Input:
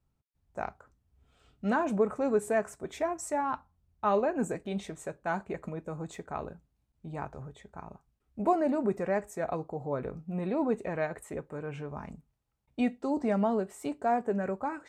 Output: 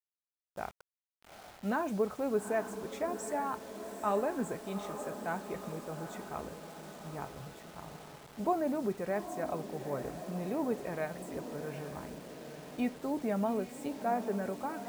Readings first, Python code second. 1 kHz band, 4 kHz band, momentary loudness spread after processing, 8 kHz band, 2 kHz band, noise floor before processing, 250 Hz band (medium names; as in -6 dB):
-4.0 dB, +1.0 dB, 15 LU, -1.5 dB, -3.5 dB, -78 dBFS, -4.0 dB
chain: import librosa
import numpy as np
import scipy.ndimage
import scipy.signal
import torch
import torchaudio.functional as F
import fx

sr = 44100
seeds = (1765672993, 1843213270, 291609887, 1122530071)

y = fx.echo_diffused(x, sr, ms=833, feedback_pct=62, wet_db=-10)
y = fx.quant_dither(y, sr, seeds[0], bits=8, dither='none')
y = F.gain(torch.from_numpy(y), -4.5).numpy()